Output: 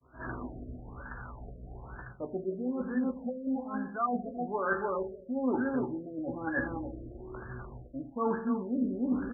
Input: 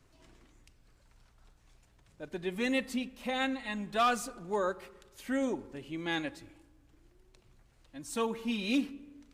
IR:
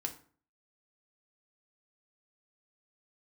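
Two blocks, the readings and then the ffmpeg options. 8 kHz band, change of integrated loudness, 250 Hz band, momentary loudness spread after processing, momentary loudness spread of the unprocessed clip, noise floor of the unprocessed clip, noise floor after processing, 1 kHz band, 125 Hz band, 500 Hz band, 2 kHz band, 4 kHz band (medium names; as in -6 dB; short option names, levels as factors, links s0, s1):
under -35 dB, -0.5 dB, +3.5 dB, 14 LU, 18 LU, -66 dBFS, -50 dBFS, 0.0 dB, +6.0 dB, +1.5 dB, -0.5 dB, under -40 dB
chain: -filter_complex "[0:a]asplit=2[s0][s1];[s1]adelay=16,volume=0.447[s2];[s0][s2]amix=inputs=2:normalize=0,asplit=2[s3][s4];[s4]adelay=297,lowpass=f=1500:p=1,volume=0.398,asplit=2[s5][s6];[s6]adelay=297,lowpass=f=1500:p=1,volume=0.16,asplit=2[s7][s8];[s8]adelay=297,lowpass=f=1500:p=1,volume=0.16[s9];[s3][s5][s7][s9]amix=inputs=4:normalize=0,dynaudnorm=f=130:g=3:m=3.16,equalizer=f=1800:w=1.4:g=14.5,areverse,acompressor=threshold=0.0126:ratio=12,areverse,highpass=53,agate=range=0.0224:threshold=0.002:ratio=3:detection=peak,asplit=2[s10][s11];[1:a]atrim=start_sample=2205,asetrate=35721,aresample=44100[s12];[s11][s12]afir=irnorm=-1:irlink=0,volume=1.06[s13];[s10][s13]amix=inputs=2:normalize=0,afftfilt=real='re*lt(b*sr/1024,680*pow(1800/680,0.5+0.5*sin(2*PI*1.1*pts/sr)))':imag='im*lt(b*sr/1024,680*pow(1800/680,0.5+0.5*sin(2*PI*1.1*pts/sr)))':win_size=1024:overlap=0.75,volume=1.58"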